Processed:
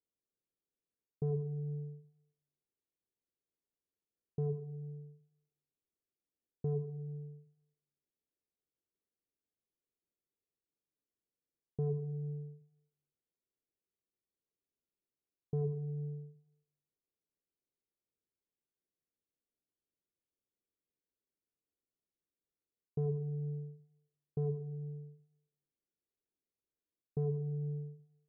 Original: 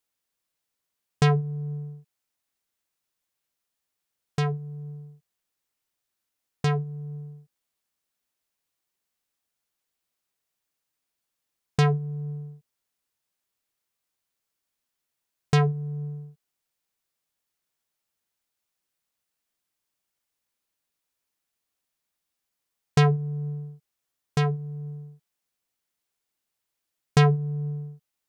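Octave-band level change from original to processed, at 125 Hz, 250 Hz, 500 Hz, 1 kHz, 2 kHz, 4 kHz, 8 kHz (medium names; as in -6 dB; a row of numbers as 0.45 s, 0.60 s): -12.5 dB, -12.5 dB, -9.0 dB, -27.5 dB, under -40 dB, under -40 dB, under -30 dB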